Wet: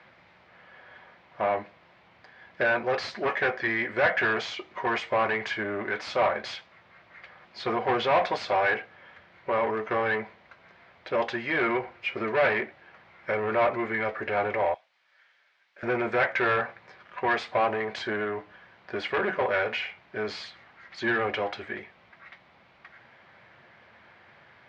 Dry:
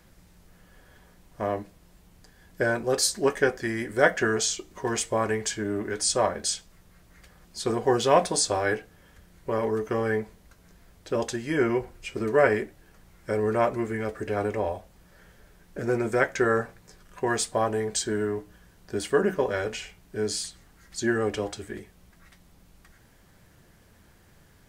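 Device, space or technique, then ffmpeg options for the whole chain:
overdrive pedal into a guitar cabinet: -filter_complex "[0:a]asplit=2[s0][s1];[s1]highpass=f=720:p=1,volume=17.8,asoftclip=type=tanh:threshold=0.562[s2];[s0][s2]amix=inputs=2:normalize=0,lowpass=f=1400:p=1,volume=0.501,highpass=92,equalizer=f=180:t=q:w=4:g=-8,equalizer=f=290:t=q:w=4:g=-9,equalizer=f=430:t=q:w=4:g=-7,equalizer=f=2200:t=q:w=4:g=6,lowpass=f=4200:w=0.5412,lowpass=f=4200:w=1.3066,asettb=1/sr,asplit=3[s3][s4][s5];[s3]atrim=end=14.744[s6];[s4]atrim=start=14.74:end=15.83,asetpts=PTS-STARTPTS,afade=t=in:d=0.004:c=qsin,afade=t=out:st=1.086:d=0.004:c=qsin,aderivative[s7];[s5]atrim=start=15.826[s8];[s6][s7]acrossfade=d=0.004:c1=hsin:c2=qsin[s9];[s9][s8]acrossfade=d=0.004:c1=qsin:c2=hsin,highpass=56,volume=0.447"

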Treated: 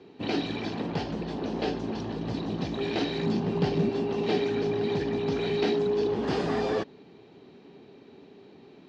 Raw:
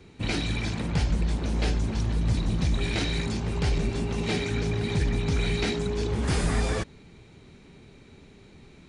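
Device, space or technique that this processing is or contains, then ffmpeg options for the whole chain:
kitchen radio: -filter_complex "[0:a]asettb=1/sr,asplit=3[s0][s1][s2];[s0]atrim=end=3.224[s3];[s1]atrim=start=3.22:end=3.89,asetpts=PTS-STARTPTS,afade=t=in:d=0.004:c=qsin,afade=t=out:st=0.666:d=0.004:c=qsin,equalizer=f=170:t=o:w=1:g=9[s4];[s2]atrim=start=3.886[s5];[s3][s4]acrossfade=d=0.004:c1=hsin:c2=qsin[s6];[s6][s5]acrossfade=d=0.004:c1=qsin:c2=hsin,highpass=220,equalizer=f=280:t=q:w=4:g=4,equalizer=f=410:t=q:w=4:g=5,equalizer=f=740:t=q:w=4:g=4,equalizer=f=1400:t=q:w=4:g=-5,equalizer=f=2200:t=q:w=4:g=-9,equalizer=f=3700:t=q:w=4:g=-4,lowpass=f=4500:w=0.5412,lowpass=f=4500:w=1.3066,volume=1.12"

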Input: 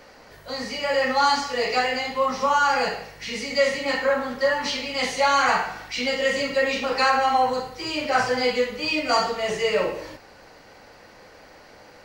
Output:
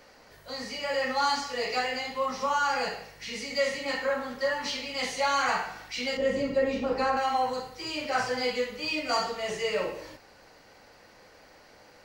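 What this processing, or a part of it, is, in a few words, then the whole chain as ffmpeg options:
exciter from parts: -filter_complex "[0:a]asplit=2[s0][s1];[s1]highpass=f=4800:p=1,asoftclip=type=tanh:threshold=0.0447,volume=0.562[s2];[s0][s2]amix=inputs=2:normalize=0,asettb=1/sr,asplit=3[s3][s4][s5];[s3]atrim=end=6.174[s6];[s4]atrim=start=6.17:end=7.17,asetpts=PTS-STARTPTS,afade=t=in:d=0.004:c=qsin,afade=t=out:st=0.996:d=0.004:c=qsin,tiltshelf=f=910:g=9.5[s7];[s5]atrim=start=7.166[s8];[s6][s7]acrossfade=d=0.004:c1=hsin:c2=qsin[s9];[s9][s8]acrossfade=d=0.004:c1=qsin:c2=hsin,volume=0.447"

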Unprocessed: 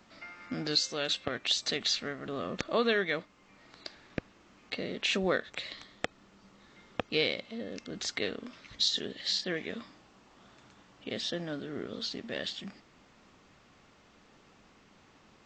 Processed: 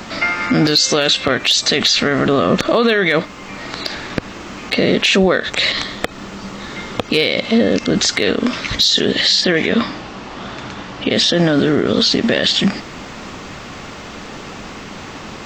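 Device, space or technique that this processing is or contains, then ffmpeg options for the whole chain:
loud club master: -filter_complex "[0:a]acompressor=threshold=0.0251:ratio=2.5,asoftclip=type=hard:threshold=0.0668,alimiter=level_in=44.7:limit=0.891:release=50:level=0:latency=1,asettb=1/sr,asplit=3[s0][s1][s2];[s0]atrim=end=9.694[s3];[s1]atrim=start=9.69:end=11.12,asetpts=PTS-STARTPTS,afade=t=in:d=0.004:c=qsin,afade=t=out:st=1.426:d=0.004:c=qsin,lowpass=5300[s4];[s2]atrim=start=11.116[s5];[s3][s4]acrossfade=d=0.004:c1=hsin:c2=qsin[s6];[s6][s5]acrossfade=d=0.004:c1=qsin:c2=hsin,volume=0.631"

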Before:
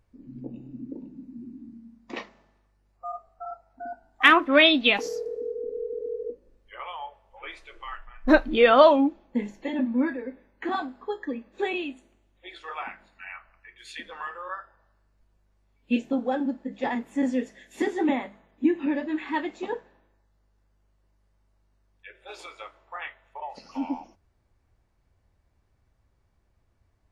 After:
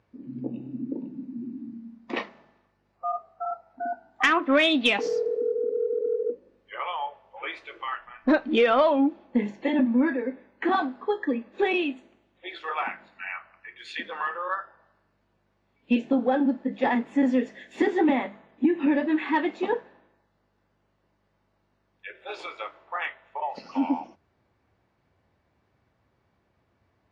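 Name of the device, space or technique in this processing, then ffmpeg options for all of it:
AM radio: -af "highpass=140,lowpass=3900,acompressor=threshold=0.0708:ratio=5,asoftclip=type=tanh:threshold=0.178,volume=2"

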